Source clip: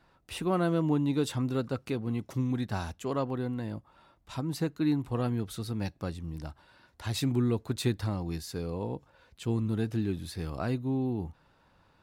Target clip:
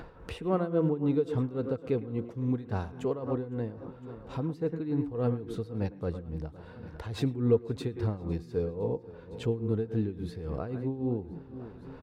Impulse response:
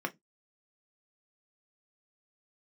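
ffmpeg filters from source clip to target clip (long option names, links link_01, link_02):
-filter_complex "[0:a]lowpass=frequency=1500:poles=1,equalizer=frequency=460:width=4.9:gain=13.5,asplit=2[link_01][link_02];[1:a]atrim=start_sample=2205,adelay=108[link_03];[link_02][link_03]afir=irnorm=-1:irlink=0,volume=-14.5dB[link_04];[link_01][link_04]amix=inputs=2:normalize=0,tremolo=f=3.6:d=0.78,lowshelf=frequency=85:gain=7.5,aecho=1:1:509|1018|1527:0.0794|0.0389|0.0191,acompressor=mode=upward:threshold=-31dB:ratio=2.5"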